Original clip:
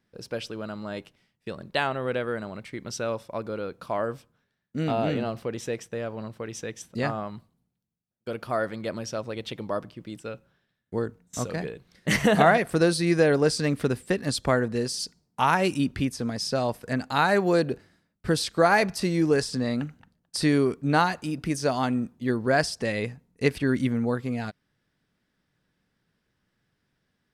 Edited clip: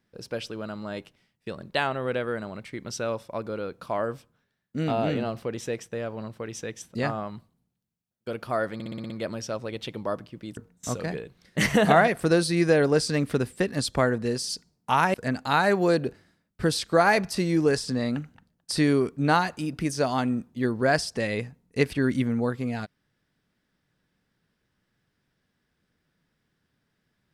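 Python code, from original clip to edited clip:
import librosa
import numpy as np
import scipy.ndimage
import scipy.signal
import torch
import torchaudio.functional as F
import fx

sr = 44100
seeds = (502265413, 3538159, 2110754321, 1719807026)

y = fx.edit(x, sr, fx.stutter(start_s=8.74, slice_s=0.06, count=7),
    fx.cut(start_s=10.21, length_s=0.86),
    fx.cut(start_s=15.64, length_s=1.15), tone=tone)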